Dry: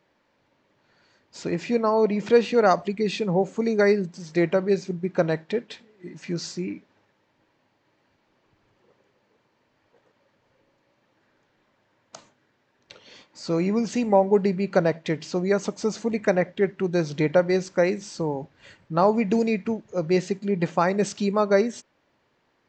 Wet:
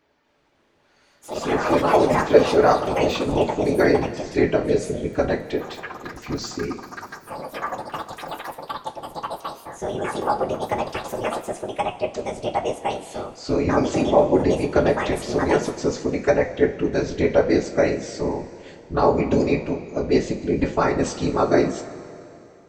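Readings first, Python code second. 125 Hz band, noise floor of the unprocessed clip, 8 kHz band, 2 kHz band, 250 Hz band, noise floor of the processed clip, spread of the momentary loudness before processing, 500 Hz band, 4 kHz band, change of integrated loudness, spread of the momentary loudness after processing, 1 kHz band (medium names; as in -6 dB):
+2.0 dB, -69 dBFS, +4.0 dB, +3.5 dB, +2.5 dB, -59 dBFS, 11 LU, +3.0 dB, +4.5 dB, +1.5 dB, 15 LU, +5.0 dB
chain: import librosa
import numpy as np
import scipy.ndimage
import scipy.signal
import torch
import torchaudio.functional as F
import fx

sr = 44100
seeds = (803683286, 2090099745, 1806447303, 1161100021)

y = fx.whisperise(x, sr, seeds[0])
y = fx.rev_double_slope(y, sr, seeds[1], early_s=0.23, late_s=2.8, knee_db=-18, drr_db=3.0)
y = fx.echo_pitch(y, sr, ms=279, semitones=6, count=3, db_per_echo=-6.0)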